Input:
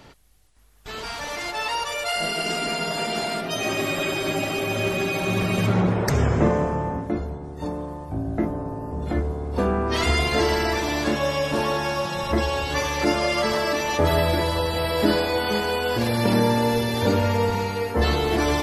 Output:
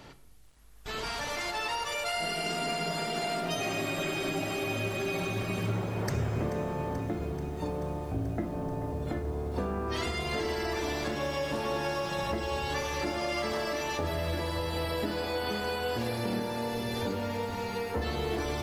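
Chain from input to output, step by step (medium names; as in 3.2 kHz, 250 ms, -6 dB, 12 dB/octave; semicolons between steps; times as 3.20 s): compression, threshold -28 dBFS, peak gain reduction 13.5 dB; on a send at -11.5 dB: reverberation RT60 0.90 s, pre-delay 24 ms; on the sum: bit-crushed delay 434 ms, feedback 80%, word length 8-bit, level -14.5 dB; trim -2 dB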